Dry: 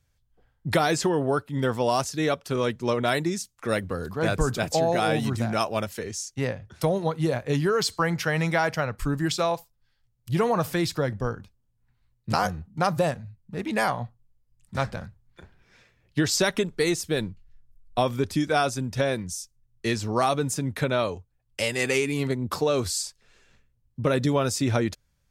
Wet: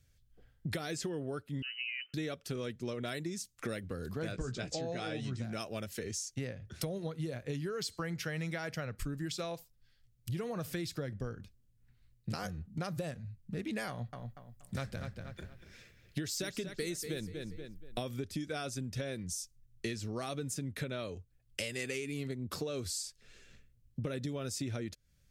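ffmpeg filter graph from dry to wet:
-filter_complex "[0:a]asettb=1/sr,asplit=3[a][b][c];[a]atrim=end=1.624[d];[b]atrim=start=1.62:end=2.14,asetpts=PTS-STARTPTS,afade=t=in:d=0.004:c=qsin,afade=t=out:st=0.516:d=0.004:c=qsin,lowpass=f=2.6k:t=q:w=0.5098,lowpass=f=2.6k:t=q:w=0.6013,lowpass=f=2.6k:t=q:w=0.9,lowpass=f=2.6k:t=q:w=2.563,afreqshift=-3100,aderivative[e];[c]atrim=start=2.136[f];[d][e]acrossfade=d=0.004:c1=hsin:c2=qsin[g];[g][f]acrossfade=d=0.004:c1=qsin:c2=hsin,asettb=1/sr,asplit=3[h][i][j];[h]atrim=end=4.324[k];[i]atrim=start=4.32:end=5.44,asetpts=PTS-STARTPTS,afade=t=in:d=0.004:c=qsin,afade=t=out:st=1.116:d=0.004:c=qsin,lowpass=f=7.4k:w=0.5412,lowpass=f=7.4k:w=1.3066,asplit=2[l][m];[m]adelay=16,volume=-7dB[n];[l][n]amix=inputs=2:normalize=0,atrim=end_sample=49392[o];[j]atrim=start=5.436[p];[k][o]acrossfade=d=0.004:c1=hsin:c2=qsin[q];[q][p]acrossfade=d=0.004:c1=qsin:c2=hsin,asettb=1/sr,asplit=3[r][s][t];[r]atrim=end=13.894[u];[s]atrim=start=13.89:end=18.14,asetpts=PTS-STARTPTS,afade=t=in:d=0.004:c=qsin,afade=t=out:st=4.246:d=0.004:c=qsin,deesser=0.45,highshelf=f=11k:g=9.5,asplit=2[v][w];[w]adelay=238,lowpass=f=4.4k:p=1,volume=-11.5dB,asplit=2[x][y];[y]adelay=238,lowpass=f=4.4k:p=1,volume=0.3,asplit=2[z][aa];[aa]adelay=238,lowpass=f=4.4k:p=1,volume=0.3[ab];[v][x][z][ab]amix=inputs=4:normalize=0,atrim=end_sample=187425[ac];[t]atrim=start=18.136[ad];[u][ac]acrossfade=d=0.004:c1=hsin:c2=qsin[ae];[ae][ad]acrossfade=d=0.004:c1=qsin:c2=hsin,equalizer=f=920:t=o:w=0.93:g=-12,acompressor=threshold=-38dB:ratio=6,volume=2dB"

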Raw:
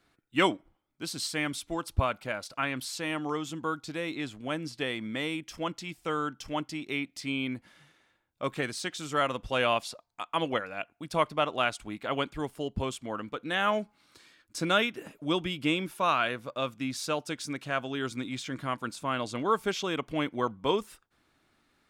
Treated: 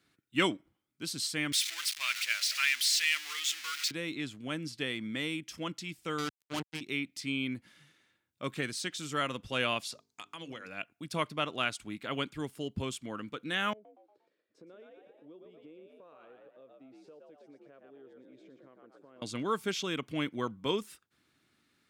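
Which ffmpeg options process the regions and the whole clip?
-filter_complex "[0:a]asettb=1/sr,asplit=3[a][b][c];[a]atrim=end=1.524[d];[b]atrim=start=1.52:end=3.91,asetpts=PTS-STARTPTS,afade=t=in:d=0.004:c=qsin,afade=t=out:st=2.386:d=0.004:c=qsin,aeval=exprs='val(0)+0.5*0.0251*sgn(val(0))':c=same,highpass=f=2.1k:t=q:w=2,equalizer=f=5.1k:t=o:w=1.3:g=5.5[e];[c]atrim=start=3.906[f];[d][e]acrossfade=d=0.004:c1=hsin:c2=qsin[g];[g][f]acrossfade=d=0.004:c1=qsin:c2=hsin,asettb=1/sr,asplit=3[h][i][j];[h]atrim=end=6.184[k];[i]atrim=start=6.18:end=6.81,asetpts=PTS-STARTPTS,afade=t=in:d=0.004:c=qsin,afade=t=out:st=0.626:d=0.004:c=qsin,acrossover=split=4600[l][m];[m]acompressor=threshold=-58dB:ratio=4:attack=1:release=60[n];[l][n]amix=inputs=2:normalize=0,acrusher=bits=4:mix=0:aa=0.5[o];[j]atrim=start=6.806[p];[k][o]acrossfade=d=0.004:c1=hsin:c2=qsin[q];[q][p]acrossfade=d=0.004:c1=qsin:c2=hsin,asettb=1/sr,asplit=3[r][s][t];[r]atrim=end=9.924[u];[s]atrim=start=9.92:end=10.68,asetpts=PTS-STARTPTS,afade=t=in:d=0.004:c=qsin,afade=t=out:st=0.756:d=0.004:c=qsin,equalizer=f=6.1k:w=1.1:g=9,bandreject=f=50:t=h:w=6,bandreject=f=100:t=h:w=6,bandreject=f=150:t=h:w=6,bandreject=f=200:t=h:w=6,bandreject=f=250:t=h:w=6,bandreject=f=300:t=h:w=6,bandreject=f=350:t=h:w=6,bandreject=f=400:t=h:w=6,bandreject=f=450:t=h:w=6,acompressor=threshold=-35dB:ratio=10:attack=3.2:release=140:knee=1:detection=peak[v];[t]atrim=start=10.676[w];[u][v]acrossfade=d=0.004:c1=hsin:c2=qsin[x];[x][w]acrossfade=d=0.004:c1=qsin:c2=hsin,asettb=1/sr,asplit=3[y][z][aa];[y]atrim=end=13.734[ab];[z]atrim=start=13.73:end=19.22,asetpts=PTS-STARTPTS,afade=t=in:d=0.004:c=qsin,afade=t=out:st=5.486:d=0.004:c=qsin,bandpass=f=470:t=q:w=3.8,asplit=5[ac][ad][ae][af][ag];[ad]adelay=117,afreqshift=64,volume=-4dB[ah];[ae]adelay=234,afreqshift=128,volume=-13.1dB[ai];[af]adelay=351,afreqshift=192,volume=-22.2dB[aj];[ag]adelay=468,afreqshift=256,volume=-31.4dB[ak];[ac][ah][ai][aj][ak]amix=inputs=5:normalize=0,atrim=end_sample=242109,acompressor=threshold=-49dB:ratio=3:attack=3.2:release=140:knee=1:detection=peak[al];[aa]atrim=start=19.216[am];[ab][al]acrossfade=d=0.004:c1=hsin:c2=qsin[an];[an][am]acrossfade=d=0.004:c1=qsin:c2=hsin,highpass=100,equalizer=f=760:t=o:w=1.6:g=-9.5"

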